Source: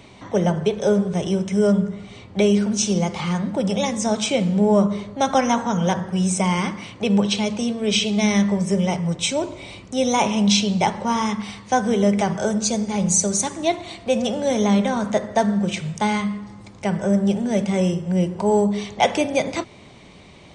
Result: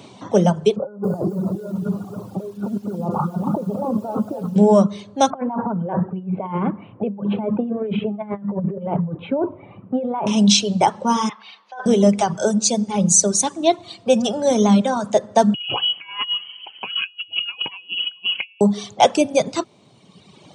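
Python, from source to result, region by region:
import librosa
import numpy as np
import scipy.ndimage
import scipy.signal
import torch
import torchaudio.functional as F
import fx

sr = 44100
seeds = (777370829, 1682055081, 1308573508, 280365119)

y = fx.chain(x, sr, fx.over_compress(threshold_db=-27.0, ratio=-1.0),
    fx.brickwall_lowpass(high_hz=1500.0),
    fx.echo_crushed(ms=277, feedback_pct=35, bits=8, wet_db=-5.5), at=(0.76, 4.56))
y = fx.chain(y, sr, fx.gaussian_blur(sigma=5.1),
    fx.over_compress(threshold_db=-25.0, ratio=-1.0), at=(5.3, 10.27))
y = fx.chain(y, sr, fx.highpass(hz=1000.0, slope=12),
    fx.over_compress(threshold_db=-31.0, ratio=-1.0),
    fx.air_absorb(metres=290.0), at=(11.29, 11.86))
y = fx.chain(y, sr, fx.over_compress(threshold_db=-26.0, ratio=-0.5),
    fx.freq_invert(carrier_hz=3100), at=(15.54, 18.61))
y = fx.dereverb_blind(y, sr, rt60_s=1.6)
y = scipy.signal.sosfilt(scipy.signal.butter(4, 120.0, 'highpass', fs=sr, output='sos'), y)
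y = fx.peak_eq(y, sr, hz=2000.0, db=-10.5, octaves=0.57)
y = F.gain(torch.from_numpy(y), 5.0).numpy()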